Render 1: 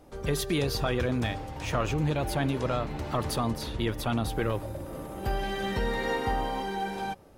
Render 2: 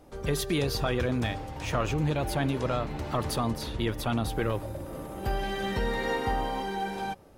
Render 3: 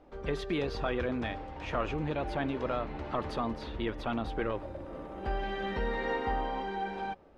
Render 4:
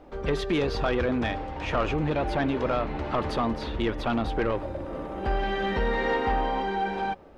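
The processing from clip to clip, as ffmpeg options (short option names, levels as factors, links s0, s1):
-af anull
-af "lowpass=2900,equalizer=f=120:t=o:w=0.9:g=-10,volume=0.75"
-af "asoftclip=type=tanh:threshold=0.0562,volume=2.51"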